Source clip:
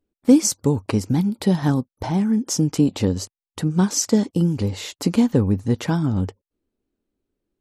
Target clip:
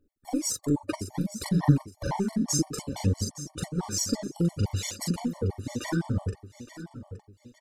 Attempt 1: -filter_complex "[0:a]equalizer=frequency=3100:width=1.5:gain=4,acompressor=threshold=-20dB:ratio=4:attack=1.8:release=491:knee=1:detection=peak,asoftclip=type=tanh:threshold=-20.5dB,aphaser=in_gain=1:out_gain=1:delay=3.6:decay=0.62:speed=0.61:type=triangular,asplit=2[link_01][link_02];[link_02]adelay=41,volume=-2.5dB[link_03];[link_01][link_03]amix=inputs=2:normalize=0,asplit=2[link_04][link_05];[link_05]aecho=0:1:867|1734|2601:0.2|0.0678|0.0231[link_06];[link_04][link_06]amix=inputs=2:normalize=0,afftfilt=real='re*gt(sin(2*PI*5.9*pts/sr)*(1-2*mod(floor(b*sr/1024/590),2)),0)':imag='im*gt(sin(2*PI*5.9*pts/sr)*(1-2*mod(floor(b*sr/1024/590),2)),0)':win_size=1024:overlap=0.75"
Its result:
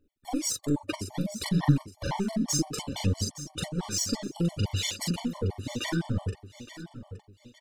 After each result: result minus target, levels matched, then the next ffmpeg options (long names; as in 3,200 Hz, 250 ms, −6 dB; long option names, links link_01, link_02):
soft clipping: distortion +10 dB; 4,000 Hz band +4.5 dB
-filter_complex "[0:a]equalizer=frequency=3100:width=1.5:gain=4,acompressor=threshold=-20dB:ratio=4:attack=1.8:release=491:knee=1:detection=peak,asoftclip=type=tanh:threshold=-14dB,aphaser=in_gain=1:out_gain=1:delay=3.6:decay=0.62:speed=0.61:type=triangular,asplit=2[link_01][link_02];[link_02]adelay=41,volume=-2.5dB[link_03];[link_01][link_03]amix=inputs=2:normalize=0,asplit=2[link_04][link_05];[link_05]aecho=0:1:867|1734|2601:0.2|0.0678|0.0231[link_06];[link_04][link_06]amix=inputs=2:normalize=0,afftfilt=real='re*gt(sin(2*PI*5.9*pts/sr)*(1-2*mod(floor(b*sr/1024/590),2)),0)':imag='im*gt(sin(2*PI*5.9*pts/sr)*(1-2*mod(floor(b*sr/1024/590),2)),0)':win_size=1024:overlap=0.75"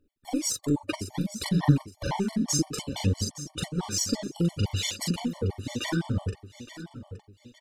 4,000 Hz band +4.0 dB
-filter_complex "[0:a]equalizer=frequency=3100:width=1.5:gain=-7,acompressor=threshold=-20dB:ratio=4:attack=1.8:release=491:knee=1:detection=peak,asoftclip=type=tanh:threshold=-14dB,aphaser=in_gain=1:out_gain=1:delay=3.6:decay=0.62:speed=0.61:type=triangular,asplit=2[link_01][link_02];[link_02]adelay=41,volume=-2.5dB[link_03];[link_01][link_03]amix=inputs=2:normalize=0,asplit=2[link_04][link_05];[link_05]aecho=0:1:867|1734|2601:0.2|0.0678|0.0231[link_06];[link_04][link_06]amix=inputs=2:normalize=0,afftfilt=real='re*gt(sin(2*PI*5.9*pts/sr)*(1-2*mod(floor(b*sr/1024/590),2)),0)':imag='im*gt(sin(2*PI*5.9*pts/sr)*(1-2*mod(floor(b*sr/1024/590),2)),0)':win_size=1024:overlap=0.75"